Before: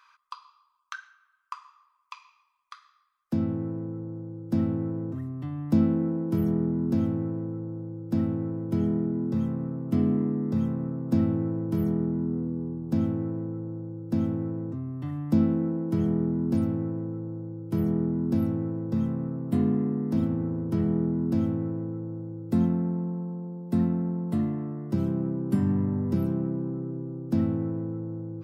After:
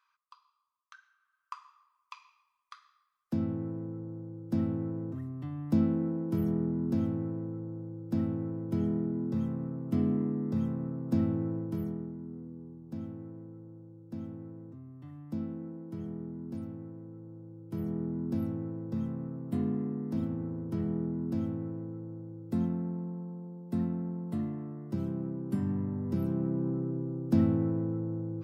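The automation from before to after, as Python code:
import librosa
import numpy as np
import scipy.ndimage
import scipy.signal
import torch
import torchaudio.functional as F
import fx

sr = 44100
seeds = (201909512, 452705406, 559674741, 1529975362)

y = fx.gain(x, sr, db=fx.line((0.95, -16.0), (1.53, -4.5), (11.56, -4.5), (12.17, -14.0), (17.0, -14.0), (18.17, -7.0), (25.99, -7.0), (26.69, 0.0)))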